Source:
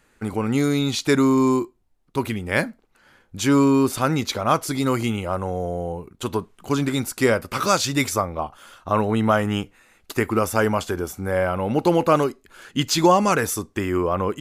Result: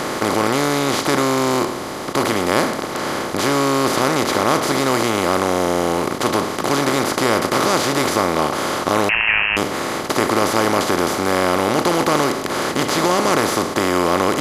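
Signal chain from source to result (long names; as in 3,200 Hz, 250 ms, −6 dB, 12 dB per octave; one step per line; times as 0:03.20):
compressor on every frequency bin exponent 0.2
0:09.09–0:09.57: voice inversion scrambler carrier 3,000 Hz
level −7 dB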